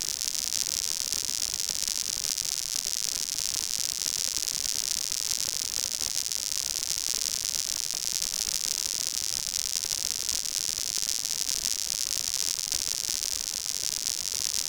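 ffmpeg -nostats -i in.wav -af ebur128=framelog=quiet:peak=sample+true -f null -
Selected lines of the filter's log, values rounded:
Integrated loudness:
  I:         -27.1 LUFS
  Threshold: -37.1 LUFS
Loudness range:
  LRA:         0.3 LU
  Threshold: -47.1 LUFS
  LRA low:   -27.2 LUFS
  LRA high:  -26.9 LUFS
Sample peak:
  Peak:       -6.7 dBFS
True peak:
  Peak:       -6.3 dBFS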